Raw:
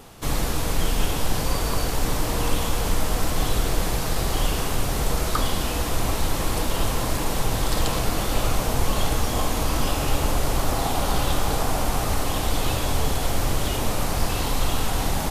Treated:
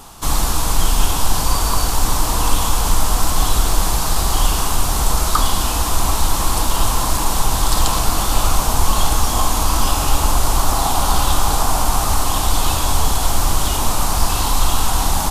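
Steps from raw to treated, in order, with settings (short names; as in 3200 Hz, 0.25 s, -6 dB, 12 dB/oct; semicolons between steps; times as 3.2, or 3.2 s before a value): graphic EQ 125/250/500/1000/2000/8000 Hz -7/-3/-10/+6/-8/+3 dB; gain +8 dB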